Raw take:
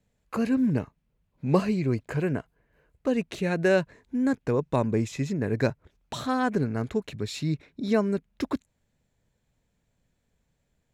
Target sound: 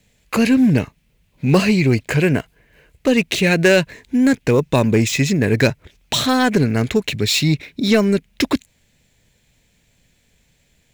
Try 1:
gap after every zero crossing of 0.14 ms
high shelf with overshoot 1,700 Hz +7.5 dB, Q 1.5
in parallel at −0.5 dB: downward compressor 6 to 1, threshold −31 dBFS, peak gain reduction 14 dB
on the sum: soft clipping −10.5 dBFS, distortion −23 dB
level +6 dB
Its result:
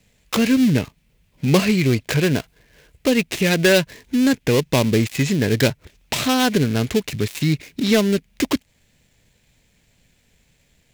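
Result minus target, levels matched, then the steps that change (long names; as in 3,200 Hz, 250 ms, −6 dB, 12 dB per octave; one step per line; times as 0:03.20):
gap after every zero crossing: distortion +17 dB; downward compressor: peak gain reduction +9 dB
change: gap after every zero crossing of 0.027 ms
change: downward compressor 6 to 1, threshold −20.5 dBFS, peak gain reduction 5 dB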